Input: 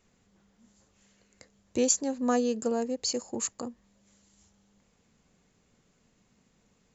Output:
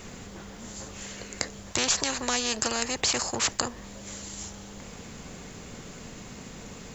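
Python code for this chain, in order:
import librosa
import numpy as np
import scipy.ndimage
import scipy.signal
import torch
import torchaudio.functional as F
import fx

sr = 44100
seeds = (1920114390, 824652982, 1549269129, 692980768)

y = fx.spectral_comp(x, sr, ratio=4.0)
y = y * librosa.db_to_amplitude(5.5)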